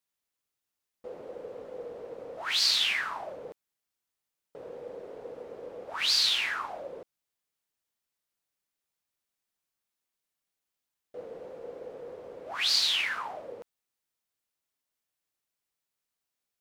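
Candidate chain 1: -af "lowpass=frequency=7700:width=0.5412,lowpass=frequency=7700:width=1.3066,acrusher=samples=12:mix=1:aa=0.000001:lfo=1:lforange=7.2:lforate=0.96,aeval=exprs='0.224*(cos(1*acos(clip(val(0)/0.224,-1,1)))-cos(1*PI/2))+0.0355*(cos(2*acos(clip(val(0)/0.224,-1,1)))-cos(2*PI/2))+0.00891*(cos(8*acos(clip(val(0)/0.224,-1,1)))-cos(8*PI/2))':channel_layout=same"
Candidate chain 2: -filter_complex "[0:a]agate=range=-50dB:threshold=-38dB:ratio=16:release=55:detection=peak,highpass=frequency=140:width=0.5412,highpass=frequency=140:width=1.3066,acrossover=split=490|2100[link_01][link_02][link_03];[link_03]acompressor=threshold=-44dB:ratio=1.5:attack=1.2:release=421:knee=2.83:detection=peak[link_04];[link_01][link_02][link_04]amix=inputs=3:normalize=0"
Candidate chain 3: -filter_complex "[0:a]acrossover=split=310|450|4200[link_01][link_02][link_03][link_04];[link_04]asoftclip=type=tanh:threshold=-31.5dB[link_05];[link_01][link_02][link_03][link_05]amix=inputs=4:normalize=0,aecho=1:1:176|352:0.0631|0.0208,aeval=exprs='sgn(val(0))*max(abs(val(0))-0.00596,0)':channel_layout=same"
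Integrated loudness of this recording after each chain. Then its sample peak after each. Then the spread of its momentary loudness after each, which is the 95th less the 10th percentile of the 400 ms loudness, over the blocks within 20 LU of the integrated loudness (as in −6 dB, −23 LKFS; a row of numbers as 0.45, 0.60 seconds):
−31.0, −32.5, −28.5 LKFS; −13.0, −21.0, −17.0 dBFS; 19, 14, 23 LU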